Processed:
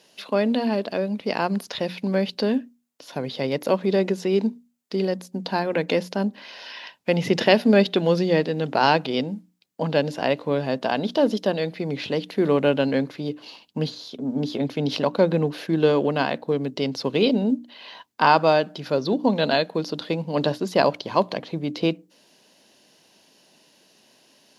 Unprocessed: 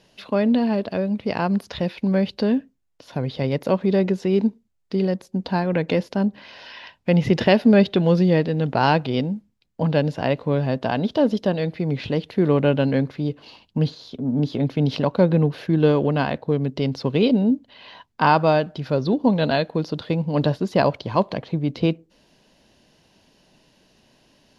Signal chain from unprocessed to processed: high-pass 220 Hz 12 dB/octave; treble shelf 5.3 kHz +10 dB; hum notches 60/120/180/240/300 Hz

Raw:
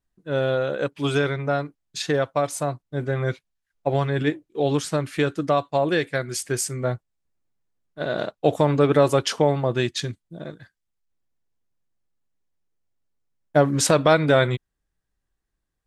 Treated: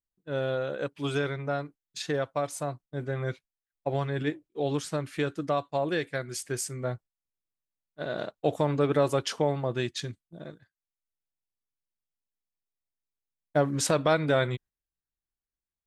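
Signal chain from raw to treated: gate -41 dBFS, range -10 dB; trim -7 dB

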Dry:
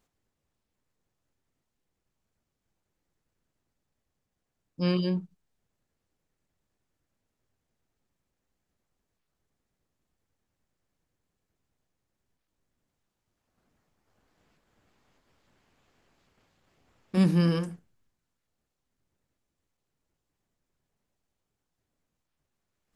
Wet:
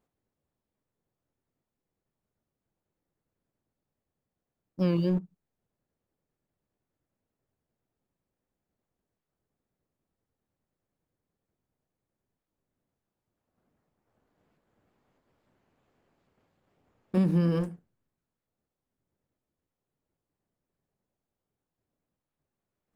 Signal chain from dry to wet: tilt EQ +3.5 dB/octave; in parallel at -4 dB: word length cut 6-bit, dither none; on the sum: FFT filter 130 Hz 0 dB, 550 Hz -6 dB, 5.7 kHz -30 dB; compression, threshold -29 dBFS, peak gain reduction 6.5 dB; warped record 45 rpm, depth 100 cents; trim +8.5 dB

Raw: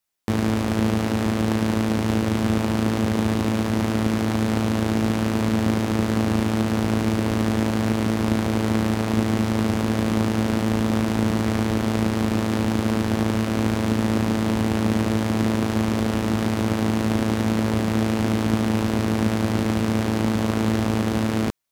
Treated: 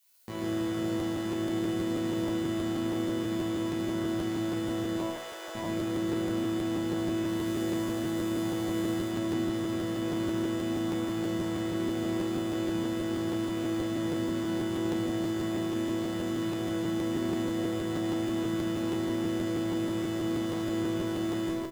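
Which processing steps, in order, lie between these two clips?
4.97–5.55 s: steep high-pass 430 Hz 48 dB/octave; 7.26–8.99 s: treble shelf 8.3 kHz +7.5 dB; added noise blue -53 dBFS; chord resonator B2 sus4, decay 0.59 s; on a send: loudspeakers at several distances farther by 23 m -7 dB, 47 m -1 dB; on the sum: crackling interface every 0.16 s, samples 512, repeat, from 0.99 s; trim +5 dB

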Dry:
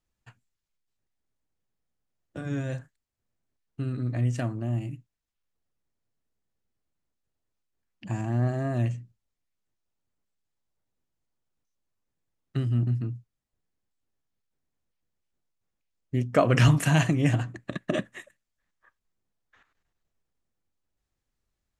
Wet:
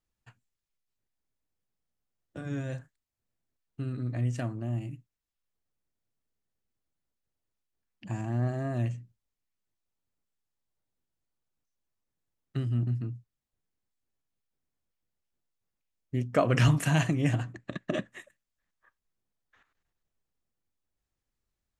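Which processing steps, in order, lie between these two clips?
17.53–18.11 s: low-pass 7.9 kHz 24 dB/octave; trim -3.5 dB

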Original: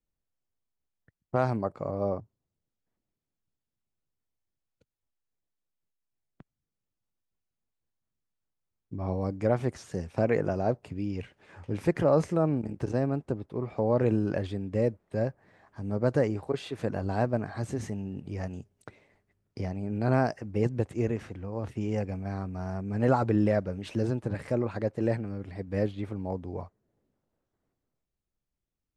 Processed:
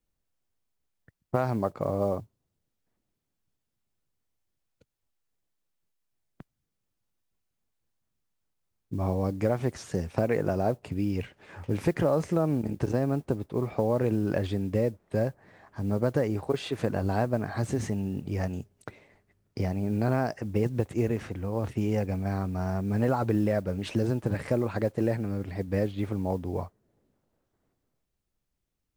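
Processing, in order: compression 4:1, threshold -27 dBFS, peak gain reduction 8.5 dB; modulation noise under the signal 32 dB; trim +5 dB

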